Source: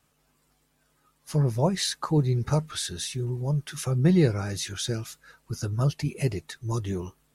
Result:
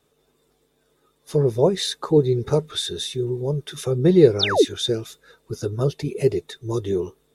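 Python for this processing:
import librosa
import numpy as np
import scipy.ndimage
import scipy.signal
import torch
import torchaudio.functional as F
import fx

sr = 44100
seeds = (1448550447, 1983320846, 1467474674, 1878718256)

y = fx.spec_paint(x, sr, seeds[0], shape='fall', start_s=4.39, length_s=0.26, low_hz=240.0, high_hz=6200.0, level_db=-24.0)
y = fx.small_body(y, sr, hz=(420.0, 3600.0), ring_ms=25, db=16)
y = y * 10.0 ** (-1.0 / 20.0)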